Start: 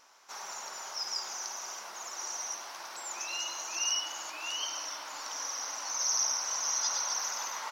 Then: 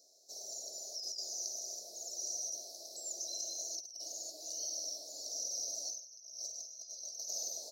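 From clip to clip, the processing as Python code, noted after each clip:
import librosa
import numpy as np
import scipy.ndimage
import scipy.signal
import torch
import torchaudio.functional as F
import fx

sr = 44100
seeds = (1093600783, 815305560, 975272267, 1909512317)

y = scipy.signal.sosfilt(scipy.signal.cheby1(5, 1.0, [670.0, 4100.0], 'bandstop', fs=sr, output='sos'), x)
y = fx.over_compress(y, sr, threshold_db=-38.0, ratio=-0.5)
y = scipy.signal.sosfilt(scipy.signal.bessel(2, 320.0, 'highpass', norm='mag', fs=sr, output='sos'), y)
y = F.gain(torch.from_numpy(y), -3.0).numpy()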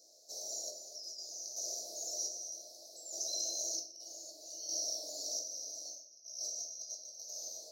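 y = fx.chopper(x, sr, hz=0.64, depth_pct=60, duty_pct=45)
y = fx.room_shoebox(y, sr, seeds[0], volume_m3=95.0, walls='mixed', distance_m=0.66)
y = F.gain(torch.from_numpy(y), 1.5).numpy()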